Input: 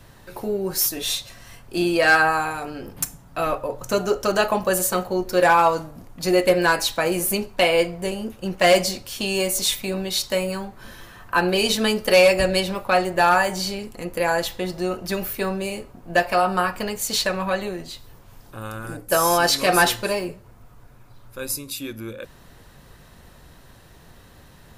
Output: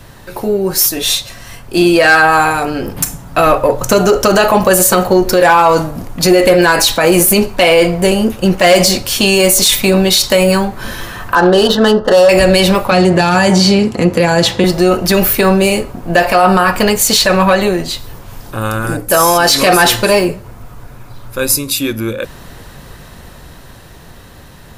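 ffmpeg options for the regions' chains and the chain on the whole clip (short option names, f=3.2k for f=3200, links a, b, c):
-filter_complex "[0:a]asettb=1/sr,asplit=3[a][b][c];[a]atrim=end=11.354[d];[b]atrim=start=11.35:end=12.29,asetpts=PTS-STARTPTS,afade=t=in:d=0.004:c=qsin,afade=t=out:st=0.936:d=0.004:c=qsin,asplit=2[e][f];[f]highpass=f=720:p=1,volume=5dB,asoftclip=type=tanh:threshold=-7.5dB[g];[e][g]amix=inputs=2:normalize=0,lowpass=f=2.1k:p=1,volume=-6dB,adynamicsmooth=sensitivity=2:basefreq=1.8k,asuperstop=centerf=2300:order=4:qfactor=2[h];[c]atrim=start=12.286[i];[d][h]acrossfade=d=0.004:c1=hsin:c2=qsin[j];[j][i]acrossfade=d=0.004:c1=qsin:c2=hsin,asettb=1/sr,asplit=3[k][l][m];[k]atrim=end=12.914[n];[l]atrim=start=12.91:end=14.64,asetpts=PTS-STARTPTS,afade=t=in:d=0.004:c=qsin,afade=t=out:st=1.726:d=0.004:c=qsin,lowshelf=f=350:g=8,acrossover=split=280|3000[o][p][q];[p]acompressor=threshold=-27dB:ratio=3:attack=3.2:release=140:knee=2.83:detection=peak[r];[o][r][q]amix=inputs=3:normalize=0,highpass=110,lowpass=6.9k[s];[m]atrim=start=14.636[t];[n][s]acrossfade=d=0.004:c1=hsin:c2=qsin[u];[u][t]acrossfade=d=0.004:c1=qsin:c2=hsin,dynaudnorm=f=730:g=7:m=11.5dB,alimiter=limit=-10.5dB:level=0:latency=1:release=40,acontrast=76,volume=4dB"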